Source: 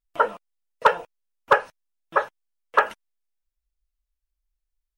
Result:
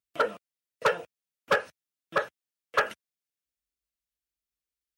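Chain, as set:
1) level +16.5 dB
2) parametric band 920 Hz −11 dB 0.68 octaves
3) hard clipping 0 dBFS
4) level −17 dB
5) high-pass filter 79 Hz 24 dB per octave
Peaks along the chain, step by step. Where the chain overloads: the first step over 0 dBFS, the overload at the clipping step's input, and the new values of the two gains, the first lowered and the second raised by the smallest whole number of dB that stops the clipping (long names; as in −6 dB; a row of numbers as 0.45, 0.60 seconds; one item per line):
+10.5, +9.5, 0.0, −17.0, −13.0 dBFS
step 1, 9.5 dB
step 1 +6.5 dB, step 4 −7 dB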